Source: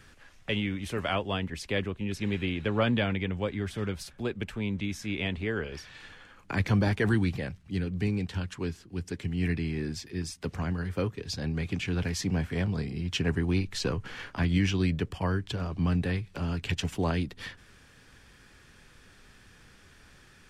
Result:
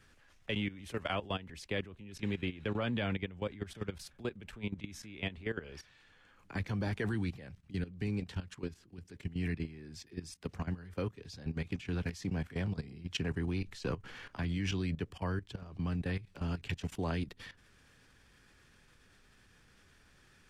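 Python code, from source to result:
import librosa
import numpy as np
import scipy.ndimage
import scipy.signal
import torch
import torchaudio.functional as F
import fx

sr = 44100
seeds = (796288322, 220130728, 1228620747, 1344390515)

y = fx.level_steps(x, sr, step_db=15)
y = y * librosa.db_to_amplitude(-3.5)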